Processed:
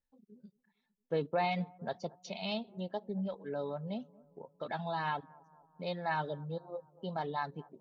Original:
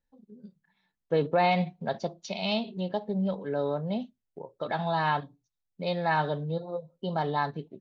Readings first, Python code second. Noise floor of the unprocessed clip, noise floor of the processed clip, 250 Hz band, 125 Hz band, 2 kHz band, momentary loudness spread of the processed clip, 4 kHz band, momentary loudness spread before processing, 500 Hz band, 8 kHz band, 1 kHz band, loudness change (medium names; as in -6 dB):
-83 dBFS, -83 dBFS, -8.0 dB, -8.5 dB, -7.5 dB, 9 LU, -8.0 dB, 10 LU, -8.0 dB, no reading, -8.0 dB, -8.0 dB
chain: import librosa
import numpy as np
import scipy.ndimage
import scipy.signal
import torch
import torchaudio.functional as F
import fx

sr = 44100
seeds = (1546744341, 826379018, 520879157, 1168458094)

y = fx.dereverb_blind(x, sr, rt60_s=0.69)
y = fx.echo_bbd(y, sr, ms=228, stages=2048, feedback_pct=60, wet_db=-23.5)
y = y * librosa.db_to_amplitude(-7.0)